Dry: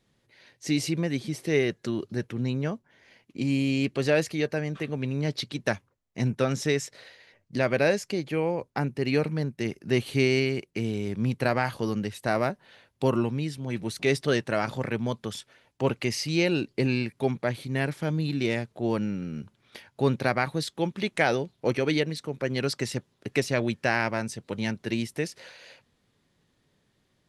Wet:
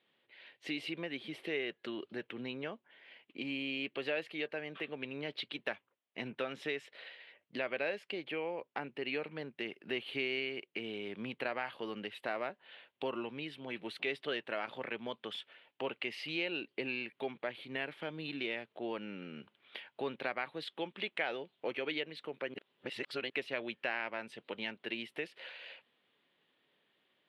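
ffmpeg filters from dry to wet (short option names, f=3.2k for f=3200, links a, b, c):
-filter_complex "[0:a]asplit=3[a][b][c];[a]atrim=end=22.542[d];[b]atrim=start=22.538:end=23.302,asetpts=PTS-STARTPTS,areverse[e];[c]atrim=start=23.298[f];[d][e]acrossfade=d=0.004:c1=hsin:c2=hsin[g];[g][f]acrossfade=d=0.004:c1=hsin:c2=hsin,highpass=360,highshelf=f=4.4k:t=q:w=3:g=-13,acompressor=threshold=-36dB:ratio=2,volume=-3.5dB"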